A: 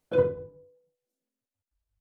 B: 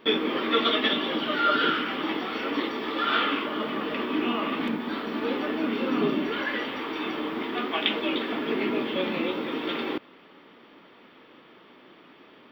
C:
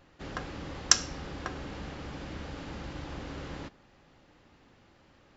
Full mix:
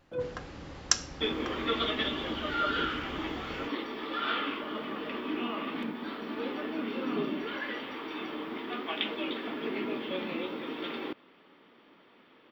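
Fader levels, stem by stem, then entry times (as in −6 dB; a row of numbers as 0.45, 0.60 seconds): −11.5, −7.0, −4.0 decibels; 0.00, 1.15, 0.00 seconds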